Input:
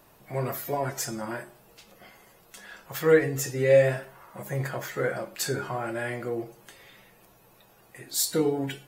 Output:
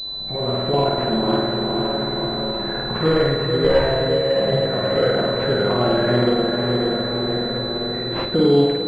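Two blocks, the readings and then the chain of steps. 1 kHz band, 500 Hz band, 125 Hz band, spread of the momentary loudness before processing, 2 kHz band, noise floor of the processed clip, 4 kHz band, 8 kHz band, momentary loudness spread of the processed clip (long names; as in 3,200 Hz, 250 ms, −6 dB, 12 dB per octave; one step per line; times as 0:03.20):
+11.5 dB, +8.0 dB, +9.0 dB, 17 LU, +5.5 dB, −26 dBFS, +18.0 dB, below −20 dB, 6 LU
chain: feedback delay with all-pass diffusion 501 ms, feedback 60%, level −6 dB
in parallel at −4 dB: wrap-around overflow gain 13.5 dB
on the sum: spectral tilt −2.5 dB per octave
downward compressor 2 to 1, threshold −32 dBFS, peak gain reduction 12 dB
parametric band 120 Hz −5 dB 0.81 octaves
spring reverb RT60 1.3 s, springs 49 ms, chirp 40 ms, DRR −3.5 dB
automatic gain control gain up to 7 dB
switching amplifier with a slow clock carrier 4,000 Hz
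level +1 dB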